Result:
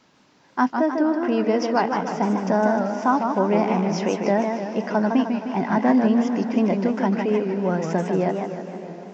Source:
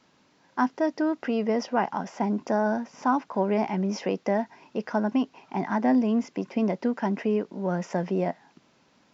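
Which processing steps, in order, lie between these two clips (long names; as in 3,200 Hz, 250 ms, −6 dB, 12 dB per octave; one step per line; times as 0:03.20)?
0:00.75–0:01.32: high-shelf EQ 3,200 Hz −10.5 dB
feedback delay with all-pass diffusion 609 ms, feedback 45%, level −14.5 dB
feedback echo with a swinging delay time 153 ms, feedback 55%, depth 171 cents, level −5.5 dB
level +4 dB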